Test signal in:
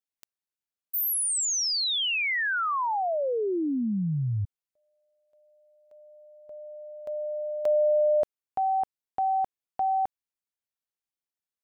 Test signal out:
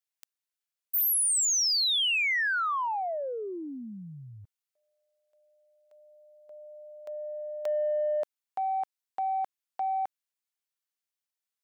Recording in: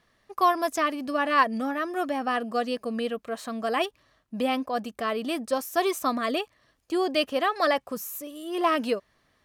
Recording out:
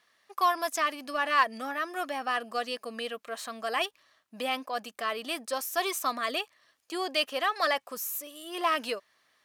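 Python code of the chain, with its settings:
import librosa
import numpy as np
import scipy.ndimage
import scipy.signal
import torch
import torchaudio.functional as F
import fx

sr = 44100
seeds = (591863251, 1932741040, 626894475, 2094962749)

p1 = fx.highpass(x, sr, hz=1300.0, slope=6)
p2 = 10.0 ** (-30.0 / 20.0) * np.tanh(p1 / 10.0 ** (-30.0 / 20.0))
y = p1 + (p2 * 10.0 ** (-9.5 / 20.0))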